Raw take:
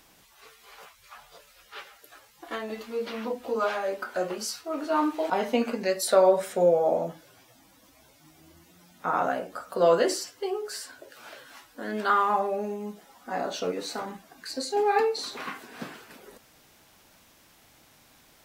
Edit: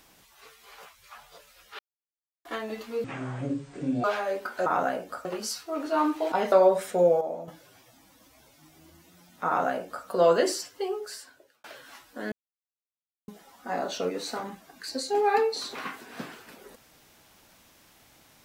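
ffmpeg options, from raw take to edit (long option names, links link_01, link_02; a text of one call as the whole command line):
ffmpeg -i in.wav -filter_complex "[0:a]asplit=13[link_01][link_02][link_03][link_04][link_05][link_06][link_07][link_08][link_09][link_10][link_11][link_12][link_13];[link_01]atrim=end=1.79,asetpts=PTS-STARTPTS,afade=type=out:start_time=1.786:duration=0.004:curve=hsin[link_14];[link_02]atrim=start=1.79:end=2.45,asetpts=PTS-STARTPTS,volume=0[link_15];[link_03]atrim=start=2.45:end=3.044,asetpts=PTS-STARTPTS,afade=type=in:duration=0.004:curve=hsin[link_16];[link_04]atrim=start=3.04:end=3.61,asetpts=PTS-STARTPTS,asetrate=25137,aresample=44100,atrim=end_sample=44100,asetpts=PTS-STARTPTS[link_17];[link_05]atrim=start=3.606:end=4.232[link_18];[link_06]atrim=start=9.088:end=9.682[link_19];[link_07]atrim=start=4.228:end=5.502[link_20];[link_08]atrim=start=6.138:end=6.832[link_21];[link_09]atrim=start=6.828:end=7.102,asetpts=PTS-STARTPTS,volume=-9dB[link_22];[link_10]atrim=start=7.098:end=11.26,asetpts=PTS-STARTPTS,afade=type=out:start_time=3.382:duration=0.78[link_23];[link_11]atrim=start=11.26:end=11.94,asetpts=PTS-STARTPTS,afade=type=in:duration=0.004:curve=hsin,afade=type=out:start_time=0.676:duration=0.004:curve=hsin[link_24];[link_12]atrim=start=11.94:end=12.9,asetpts=PTS-STARTPTS,volume=0[link_25];[link_13]atrim=start=12.9,asetpts=PTS-STARTPTS,afade=type=in:duration=0.004:curve=hsin[link_26];[link_14][link_15][link_16]concat=n=3:v=0:a=1[link_27];[link_27][link_17]acrossfade=duration=0.004:curve1=hsin:curve2=hsin[link_28];[link_28][link_18]acrossfade=duration=0.004:curve1=hsin:curve2=hsin[link_29];[link_29][link_19]acrossfade=duration=0.004:curve1=hsin:curve2=hsin[link_30];[link_30][link_20]acrossfade=duration=0.004:curve1=hsin:curve2=hsin[link_31];[link_31][link_21]acrossfade=duration=0.004:curve1=hsin:curve2=hsin[link_32];[link_32][link_22]acrossfade=duration=0.004:curve1=hsin:curve2=hsin[link_33];[link_23][link_24][link_25][link_26]concat=n=4:v=0:a=1[link_34];[link_33][link_34]acrossfade=duration=0.004:curve1=hsin:curve2=hsin" out.wav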